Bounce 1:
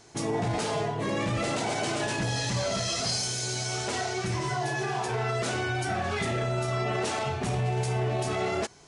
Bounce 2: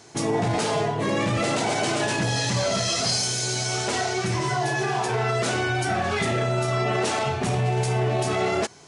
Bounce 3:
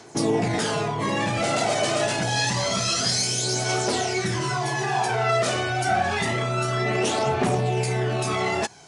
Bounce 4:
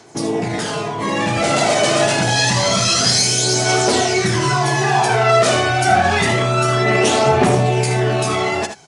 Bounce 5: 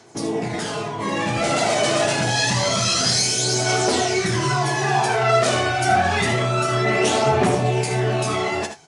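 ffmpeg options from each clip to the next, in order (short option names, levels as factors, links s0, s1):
-af "highpass=89,acontrast=32"
-filter_complex "[0:a]acrossover=split=170[s0][s1];[s0]asoftclip=type=tanh:threshold=0.0316[s2];[s1]aphaser=in_gain=1:out_gain=1:delay=1.7:decay=0.47:speed=0.27:type=triangular[s3];[s2][s3]amix=inputs=2:normalize=0"
-filter_complex "[0:a]dynaudnorm=f=810:g=3:m=2.51,asplit=2[s0][s1];[s1]aecho=0:1:58|78:0.168|0.335[s2];[s0][s2]amix=inputs=2:normalize=0,volume=1.12"
-af "flanger=delay=7.5:depth=6.9:regen=-55:speed=1.1:shape=triangular"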